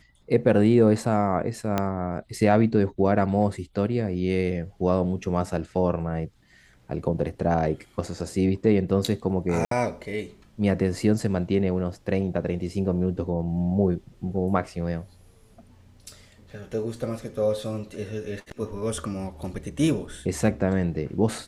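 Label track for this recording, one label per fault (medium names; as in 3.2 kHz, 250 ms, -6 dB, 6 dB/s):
1.780000	1.780000	pop -10 dBFS
9.650000	9.710000	dropout 63 ms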